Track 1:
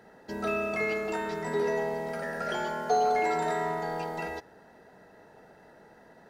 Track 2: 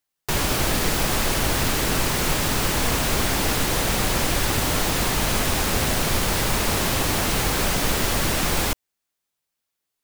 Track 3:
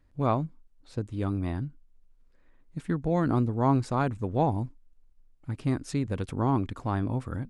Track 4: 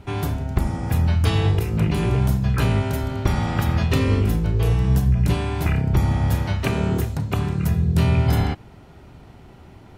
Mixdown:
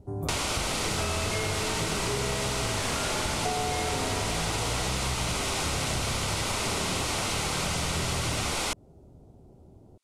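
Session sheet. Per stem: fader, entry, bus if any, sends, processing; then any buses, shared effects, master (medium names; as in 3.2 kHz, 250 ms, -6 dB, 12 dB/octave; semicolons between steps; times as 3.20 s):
+2.5 dB, 0.55 s, no send, none
+2.5 dB, 0.00 s, no send, low-pass 10 kHz 24 dB/octave; bass shelf 310 Hz -11 dB; band-stop 1.7 kHz, Q 5.9
-15.0 dB, 0.00 s, no send, none
-14.0 dB, 0.00 s, no send, Chebyshev band-stop 870–9100 Hz, order 2; resonant low shelf 730 Hz +7 dB, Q 1.5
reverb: none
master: compression 6:1, threshold -26 dBFS, peak gain reduction 10 dB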